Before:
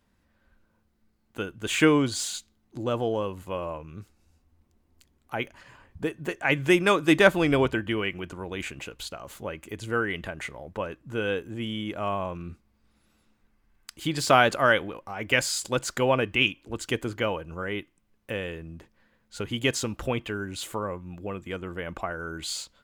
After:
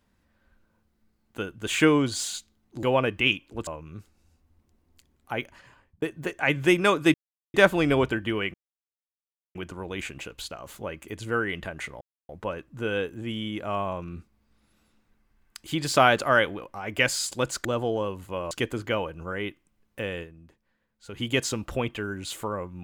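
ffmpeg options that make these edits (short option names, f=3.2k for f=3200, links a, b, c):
-filter_complex "[0:a]asplit=11[a][b][c][d][e][f][g][h][i][j][k];[a]atrim=end=2.832[l];[b]atrim=start=15.978:end=16.822[m];[c]atrim=start=3.688:end=6.04,asetpts=PTS-STARTPTS,afade=t=out:st=1.712:d=0.64:c=qsin[n];[d]atrim=start=6.04:end=7.16,asetpts=PTS-STARTPTS,afade=t=in:d=0.004:c=hsin,afade=t=out:st=1.116:d=0.004:c=hsin,apad=pad_dur=0.4[o];[e]atrim=start=7.16:end=8.16,asetpts=PTS-STARTPTS,afade=t=in:d=0.004:c=hsin,afade=t=out:st=0.996:d=0.004:c=hsin,apad=pad_dur=1.01[p];[f]atrim=start=8.16:end=10.62,asetpts=PTS-STARTPTS,afade=t=in:d=0.004:c=hsin,afade=t=out:st=2.456:d=0.004:c=hsin,apad=pad_dur=0.28[q];[g]atrim=start=10.62:end=15.982,asetpts=PTS-STARTPTS,afade=t=in:d=0.004:c=hsin[r];[h]atrim=start=2.828:end=3.692[s];[i]atrim=start=16.818:end=18.88,asetpts=PTS-STARTPTS,afade=t=out:st=1.712:d=0.35:c=exp:silence=0.334965[t];[j]atrim=start=18.88:end=19.14,asetpts=PTS-STARTPTS,volume=-9.5dB[u];[k]atrim=start=19.14,asetpts=PTS-STARTPTS,afade=t=in:d=0.35:c=exp:silence=0.334965[v];[l][m]acrossfade=d=0.004:c1=hsin:c2=hsin[w];[n][o][p][q][r]concat=n=5:v=0:a=1[x];[w][x]acrossfade=d=0.004:c1=hsin:c2=hsin[y];[y][s]acrossfade=d=0.004:c1=hsin:c2=hsin[z];[t][u][v]concat=n=3:v=0:a=1[aa];[z][aa]acrossfade=d=0.004:c1=hsin:c2=hsin"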